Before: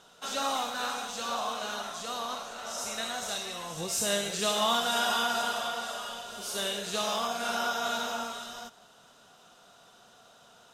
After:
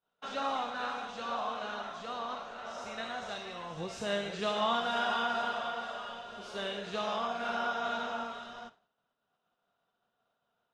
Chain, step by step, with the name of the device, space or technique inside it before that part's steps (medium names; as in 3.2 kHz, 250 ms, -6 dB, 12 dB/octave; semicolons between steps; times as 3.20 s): hearing-loss simulation (low-pass 2.7 kHz 12 dB/octave; expander -45 dBFS); trim -2 dB